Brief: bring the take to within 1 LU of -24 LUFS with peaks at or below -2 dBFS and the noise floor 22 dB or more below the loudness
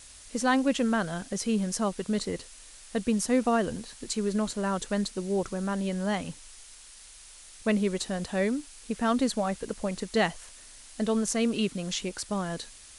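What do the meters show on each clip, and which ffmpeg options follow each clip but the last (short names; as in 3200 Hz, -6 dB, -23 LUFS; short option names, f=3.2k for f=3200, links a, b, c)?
noise floor -50 dBFS; noise floor target -52 dBFS; loudness -29.5 LUFS; peak -12.5 dBFS; loudness target -24.0 LUFS
-> -af "afftdn=nr=6:nf=-50"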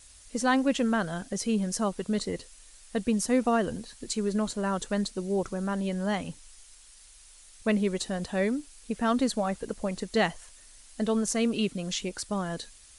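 noise floor -53 dBFS; loudness -29.5 LUFS; peak -12.5 dBFS; loudness target -24.0 LUFS
-> -af "volume=5.5dB"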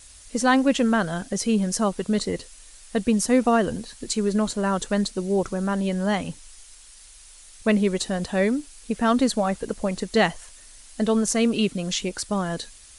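loudness -24.0 LUFS; peak -7.0 dBFS; noise floor -48 dBFS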